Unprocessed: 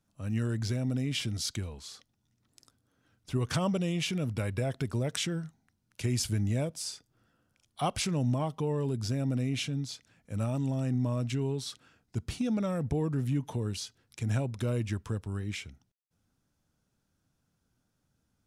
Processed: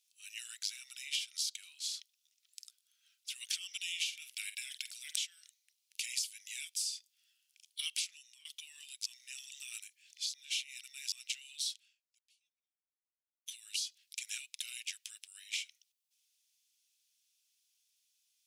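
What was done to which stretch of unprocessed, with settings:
0.48–3.33 s: high-order bell 850 Hz +12 dB
3.86–5.17 s: doubling 48 ms -11.5 dB
7.96–8.45 s: fade out, to -20.5 dB
9.06–11.12 s: reverse
11.67–13.46 s: fade out exponential
whole clip: steep high-pass 2.5 kHz 36 dB/octave; compression 8:1, threshold -42 dBFS; trim +8.5 dB

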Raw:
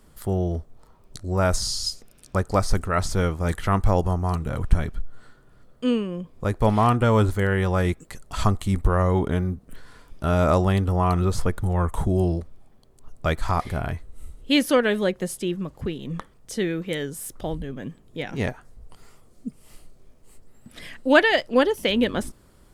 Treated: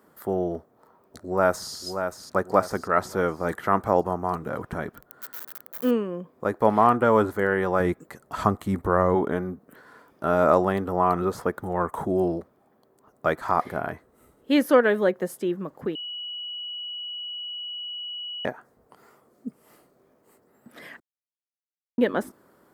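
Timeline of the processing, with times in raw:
0.56–1.71 s: echo throw 580 ms, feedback 40%, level -7.5 dB
4.95–5.91 s: zero-crossing glitches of -23 dBFS
7.80–9.15 s: bass shelf 140 Hz +9.5 dB
15.95–18.45 s: bleep 2.93 kHz -23 dBFS
21.00–21.98 s: mute
whole clip: high-pass 270 Hz 12 dB/octave; high-order bell 5 kHz -11.5 dB 2.5 oct; trim +2.5 dB

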